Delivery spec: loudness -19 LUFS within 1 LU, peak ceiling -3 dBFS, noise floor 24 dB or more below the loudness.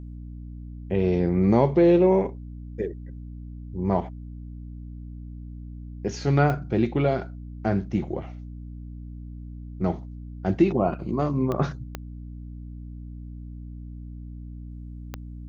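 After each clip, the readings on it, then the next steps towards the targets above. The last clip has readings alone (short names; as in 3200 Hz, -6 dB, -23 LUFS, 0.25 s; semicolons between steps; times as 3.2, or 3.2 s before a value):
clicks 4; hum 60 Hz; harmonics up to 300 Hz; hum level -36 dBFS; loudness -24.0 LUFS; peak -6.5 dBFS; loudness target -19.0 LUFS
-> de-click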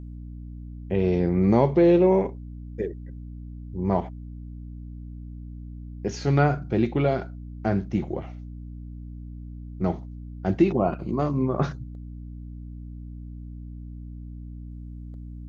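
clicks 0; hum 60 Hz; harmonics up to 300 Hz; hum level -36 dBFS
-> de-hum 60 Hz, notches 5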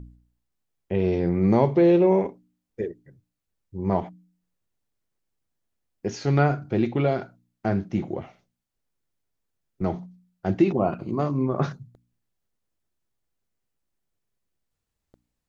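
hum none; loudness -24.5 LUFS; peak -6.5 dBFS; loudness target -19.0 LUFS
-> gain +5.5 dB; limiter -3 dBFS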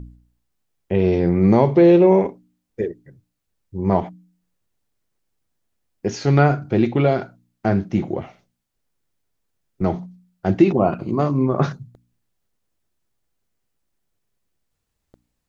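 loudness -19.0 LUFS; peak -3.0 dBFS; noise floor -76 dBFS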